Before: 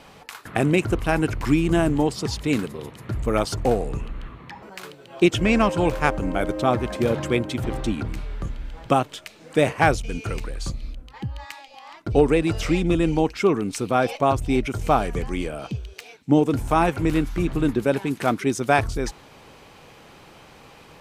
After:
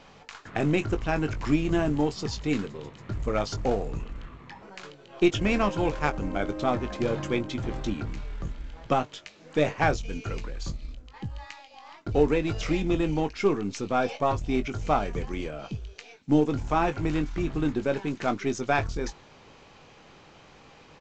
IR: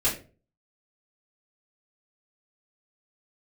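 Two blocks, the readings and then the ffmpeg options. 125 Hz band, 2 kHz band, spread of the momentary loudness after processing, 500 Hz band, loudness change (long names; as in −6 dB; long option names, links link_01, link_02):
−5.5 dB, −5.5 dB, 17 LU, −5.0 dB, −5.0 dB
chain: -filter_complex "[0:a]aeval=exprs='if(lt(val(0),0),0.708*val(0),val(0))':channel_layout=same,asplit=2[link_01][link_02];[link_02]adelay=20,volume=-9.5dB[link_03];[link_01][link_03]amix=inputs=2:normalize=0,volume=-4dB" -ar 16000 -c:a pcm_mulaw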